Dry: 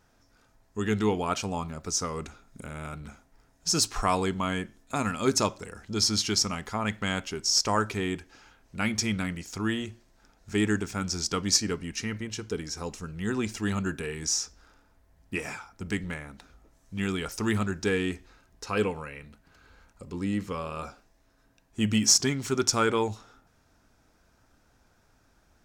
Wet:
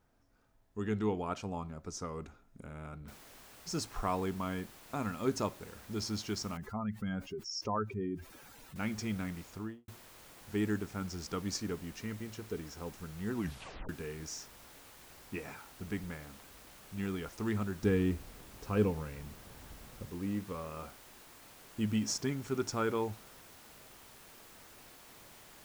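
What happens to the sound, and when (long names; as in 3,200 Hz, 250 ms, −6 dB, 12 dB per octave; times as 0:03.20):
0:03.08: noise floor change −70 dB −41 dB
0:06.57–0:08.76: expanding power law on the bin magnitudes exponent 2.1
0:09.47–0:09.88: fade out and dull
0:13.34: tape stop 0.55 s
0:17.82–0:20.06: low-shelf EQ 270 Hz +11.5 dB
whole clip: high-shelf EQ 2,100 Hz −11 dB; level −6.5 dB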